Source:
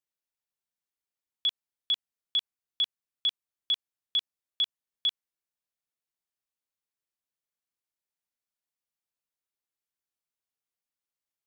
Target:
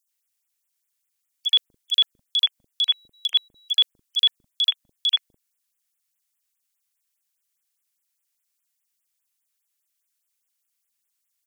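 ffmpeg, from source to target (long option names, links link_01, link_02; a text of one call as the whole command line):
ffmpeg -i in.wav -filter_complex "[0:a]tiltshelf=frequency=1400:gain=-9.5,acrossover=split=420|3900[link_01][link_02][link_03];[link_02]adelay=80[link_04];[link_01]adelay=250[link_05];[link_05][link_04][link_03]amix=inputs=3:normalize=0,asettb=1/sr,asplit=3[link_06][link_07][link_08];[link_06]atrim=end=2.824[link_09];[link_07]atrim=start=2.82:end=3.71,asetpts=PTS-STARTPTS,afade=type=in:duration=0.004:curve=qsin,afade=type=out:start_time=0.886:duration=0.004:curve=qsin,aeval=exprs='val(0)+0.001*sin(2*PI*3900*n/s)':channel_layout=same[link_10];[link_08]atrim=start=3.706[link_11];[link_09][link_10]acrossfade=duration=0.004:curve1=hsin:curve2=qsin[link_12];[link_12][link_11]acrossfade=duration=0.004:curve1=qsin:curve2=hsin,afftfilt=real='re*(1-between(b*sr/1024,360*pow(5200/360,0.5+0.5*sin(2*PI*4.9*pts/sr))/1.41,360*pow(5200/360,0.5+0.5*sin(2*PI*4.9*pts/sr))*1.41))':imag='im*(1-between(b*sr/1024,360*pow(5200/360,0.5+0.5*sin(2*PI*4.9*pts/sr))/1.41,360*pow(5200/360,0.5+0.5*sin(2*PI*4.9*pts/sr))*1.41))':win_size=1024:overlap=0.75,volume=7dB" out.wav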